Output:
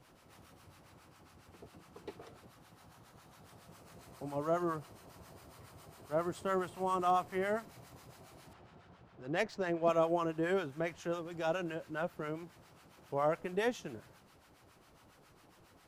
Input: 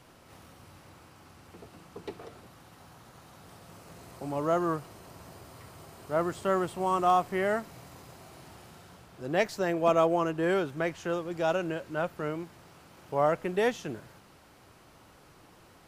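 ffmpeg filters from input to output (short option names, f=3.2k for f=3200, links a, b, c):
-filter_complex "[0:a]asettb=1/sr,asplit=3[a][b][c];[a]atrim=end=8.534[d];[b]atrim=start=8.53:end=9.89,asetpts=PTS-STARTPTS,afade=t=in:d=0.004:c=qsin,afade=t=out:st=1.356:d=0.004:c=qsin,adynamicsmooth=sensitivity=7:basefreq=3.4k[e];[c]atrim=start=9.886[f];[d][e]acrossfade=d=0.004:c1=hsin:c2=qsin[g];[g][f]acrossfade=d=0.004:c1=qsin:c2=hsin,acrossover=split=850[h][i];[h]aeval=exprs='val(0)*(1-0.7/2+0.7/2*cos(2*PI*7.3*n/s))':c=same[j];[i]aeval=exprs='val(0)*(1-0.7/2-0.7/2*cos(2*PI*7.3*n/s))':c=same[k];[j][k]amix=inputs=2:normalize=0,volume=-3dB"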